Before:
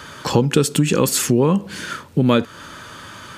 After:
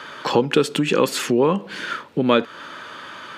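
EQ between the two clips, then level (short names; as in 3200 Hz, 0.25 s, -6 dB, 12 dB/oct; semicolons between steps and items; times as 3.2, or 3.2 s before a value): HPF 150 Hz 12 dB/oct; tone controls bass -9 dB, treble -14 dB; bell 3900 Hz +4.5 dB 1.3 oct; +1.5 dB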